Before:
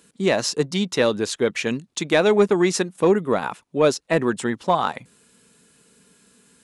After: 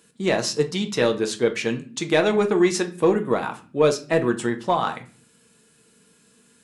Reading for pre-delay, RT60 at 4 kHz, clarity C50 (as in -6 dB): 6 ms, n/a, 15.0 dB